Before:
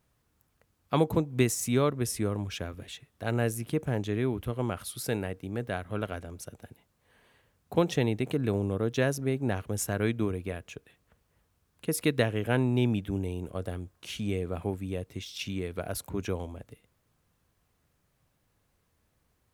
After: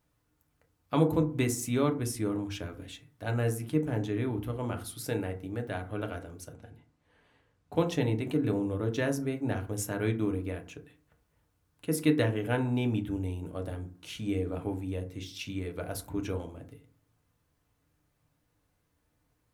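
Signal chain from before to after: 6.53–7.73 air absorption 55 m; FDN reverb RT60 0.39 s, low-frequency decay 1.45×, high-frequency decay 0.45×, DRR 3.5 dB; gain -4 dB

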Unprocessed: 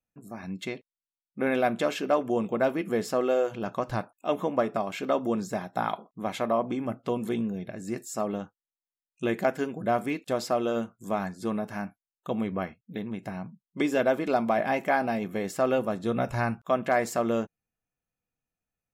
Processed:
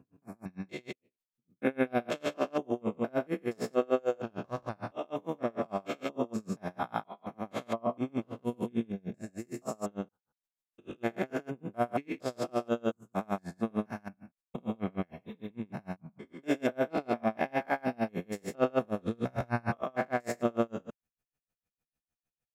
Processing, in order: stepped spectrum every 0.2 s; tempo 0.84×; spectral repair 15.13–15.47, 830–2800 Hz after; dB-linear tremolo 6.6 Hz, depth 33 dB; gain +4 dB

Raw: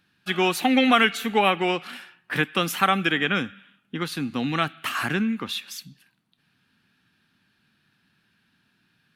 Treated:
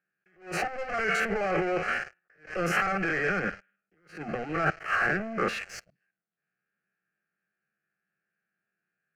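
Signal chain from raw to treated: stepped spectrum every 50 ms; HPF 190 Hz 24 dB/oct; bell 4600 Hz -7.5 dB 2 oct; sample leveller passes 5; negative-ratio compressor -19 dBFS, ratio -1; air absorption 150 m; fixed phaser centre 970 Hz, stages 6; attack slew limiter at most 170 dB/s; gain -3 dB

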